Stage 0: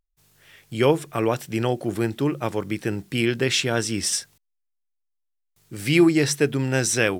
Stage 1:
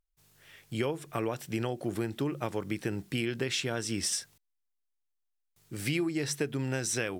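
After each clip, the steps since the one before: compression 10:1, threshold -23 dBFS, peak gain reduction 12 dB; trim -4 dB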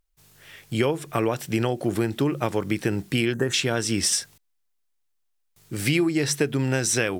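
time-frequency box 3.33–3.54 s, 1.9–5.9 kHz -18 dB; trim +8.5 dB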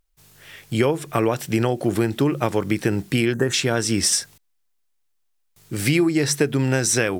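dynamic bell 3 kHz, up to -4 dB, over -38 dBFS, Q 2.2; trim +3.5 dB

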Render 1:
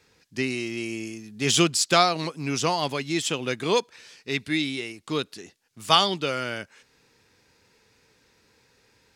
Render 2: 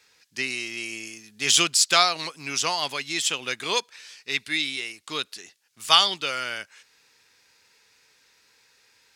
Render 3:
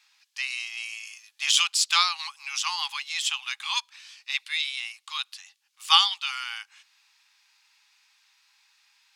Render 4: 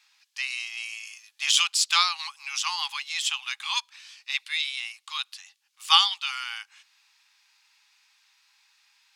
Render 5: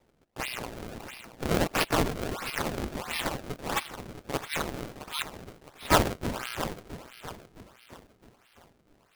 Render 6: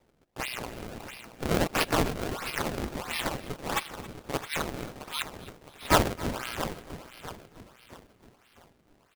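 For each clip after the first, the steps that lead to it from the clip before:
tilt shelf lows -9 dB, about 660 Hz; trim -4.5 dB
rippled Chebyshev high-pass 790 Hz, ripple 6 dB
no audible change
echo whose repeats swap between lows and highs 331 ms, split 1.6 kHz, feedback 63%, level -7.5 dB; decimation with a swept rate 29×, swing 160% 1.5 Hz; ring modulator 150 Hz
feedback delay 272 ms, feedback 42%, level -19 dB

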